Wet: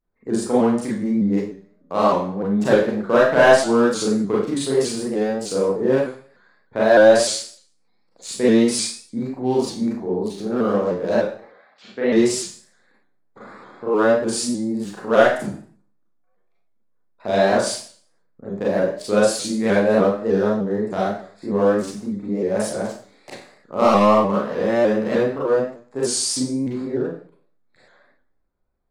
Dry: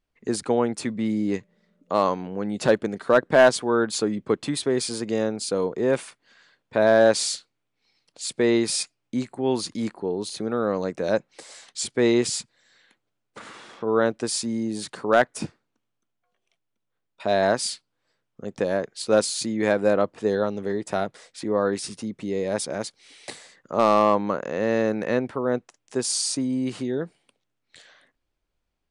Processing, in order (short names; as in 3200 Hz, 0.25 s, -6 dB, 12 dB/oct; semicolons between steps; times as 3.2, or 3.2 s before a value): Wiener smoothing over 15 samples; 11.32–12.13 speaker cabinet 250–2900 Hz, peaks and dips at 350 Hz -9 dB, 960 Hz -5 dB, 2400 Hz -4 dB; Schroeder reverb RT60 0.48 s, combs from 30 ms, DRR -7 dB; shaped vibrato saw up 3.3 Hz, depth 100 cents; gain -3 dB